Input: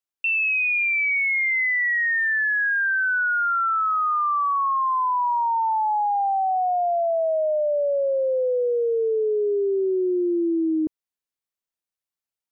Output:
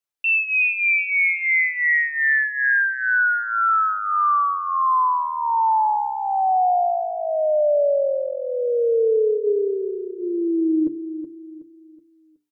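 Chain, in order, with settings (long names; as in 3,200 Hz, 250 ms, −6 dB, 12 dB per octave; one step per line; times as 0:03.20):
mains-hum notches 60/120/180/240/300/360/420 Hz
comb filter 6.8 ms, depth 66%
repeating echo 372 ms, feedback 37%, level −11 dB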